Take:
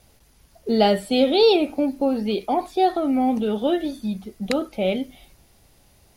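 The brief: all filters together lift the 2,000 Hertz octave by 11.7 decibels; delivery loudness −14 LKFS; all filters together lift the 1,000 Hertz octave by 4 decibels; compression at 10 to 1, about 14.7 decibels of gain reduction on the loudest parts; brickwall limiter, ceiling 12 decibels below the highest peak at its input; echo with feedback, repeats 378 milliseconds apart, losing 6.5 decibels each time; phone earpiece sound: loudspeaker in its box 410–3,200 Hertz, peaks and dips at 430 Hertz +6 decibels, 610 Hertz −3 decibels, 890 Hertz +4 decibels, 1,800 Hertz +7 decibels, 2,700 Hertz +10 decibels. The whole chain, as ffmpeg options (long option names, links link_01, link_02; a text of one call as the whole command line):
ffmpeg -i in.wav -af "equalizer=frequency=1000:width_type=o:gain=3,equalizer=frequency=2000:width_type=o:gain=5.5,acompressor=threshold=-26dB:ratio=10,alimiter=limit=-23dB:level=0:latency=1,highpass=410,equalizer=frequency=430:width_type=q:width=4:gain=6,equalizer=frequency=610:width_type=q:width=4:gain=-3,equalizer=frequency=890:width_type=q:width=4:gain=4,equalizer=frequency=1800:width_type=q:width=4:gain=7,equalizer=frequency=2700:width_type=q:width=4:gain=10,lowpass=frequency=3200:width=0.5412,lowpass=frequency=3200:width=1.3066,aecho=1:1:378|756|1134|1512|1890|2268:0.473|0.222|0.105|0.0491|0.0231|0.0109,volume=18.5dB" out.wav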